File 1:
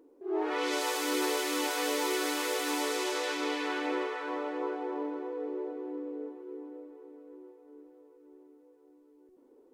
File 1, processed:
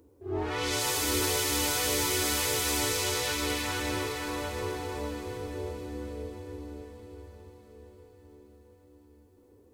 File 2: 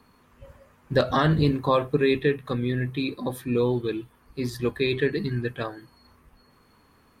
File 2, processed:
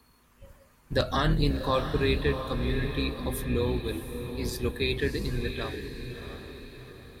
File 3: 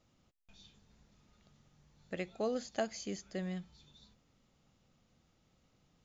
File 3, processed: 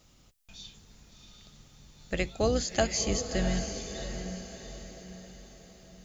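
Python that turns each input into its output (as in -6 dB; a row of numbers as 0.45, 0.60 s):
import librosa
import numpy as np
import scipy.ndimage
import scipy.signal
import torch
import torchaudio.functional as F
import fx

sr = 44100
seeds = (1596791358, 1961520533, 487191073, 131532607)

y = fx.octave_divider(x, sr, octaves=2, level_db=1.0)
y = fx.high_shelf(y, sr, hz=3400.0, db=11.5)
y = fx.echo_diffused(y, sr, ms=688, feedback_pct=46, wet_db=-8)
y = y * 10.0 ** (-12 / 20.0) / np.max(np.abs(y))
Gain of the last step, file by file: -2.0, -6.0, +7.5 dB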